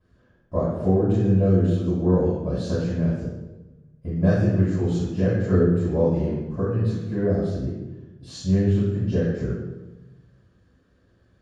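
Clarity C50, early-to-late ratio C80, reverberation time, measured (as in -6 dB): 0.5 dB, 2.5 dB, 1.1 s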